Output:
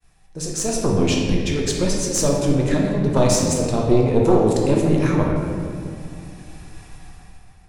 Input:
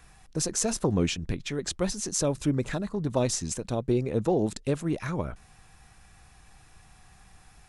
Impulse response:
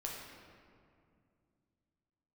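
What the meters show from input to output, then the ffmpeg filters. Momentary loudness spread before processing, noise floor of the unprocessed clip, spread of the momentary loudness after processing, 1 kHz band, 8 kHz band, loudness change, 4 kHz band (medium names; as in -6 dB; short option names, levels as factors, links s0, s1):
6 LU, -56 dBFS, 15 LU, +10.5 dB, +6.5 dB, +9.5 dB, +7.5 dB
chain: -filter_complex "[0:a]agate=range=0.0224:threshold=0.00282:ratio=3:detection=peak,equalizer=f=1300:t=o:w=0.77:g=-5,dynaudnorm=f=110:g=11:m=5.01,aeval=exprs='0.841*(cos(1*acos(clip(val(0)/0.841,-1,1)))-cos(1*PI/2))+0.266*(cos(2*acos(clip(val(0)/0.841,-1,1)))-cos(2*PI/2))+0.0335*(cos(5*acos(clip(val(0)/0.841,-1,1)))-cos(5*PI/2))':c=same[s0];[1:a]atrim=start_sample=2205[s1];[s0][s1]afir=irnorm=-1:irlink=0,volume=0.794"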